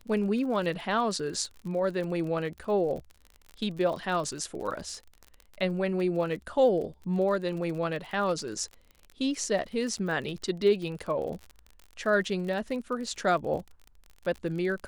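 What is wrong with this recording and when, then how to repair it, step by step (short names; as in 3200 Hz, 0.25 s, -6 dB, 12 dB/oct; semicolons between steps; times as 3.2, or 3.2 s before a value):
crackle 42/s -36 dBFS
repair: de-click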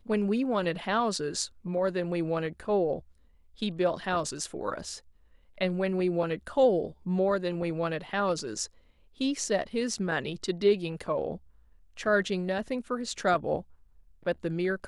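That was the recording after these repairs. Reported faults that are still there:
none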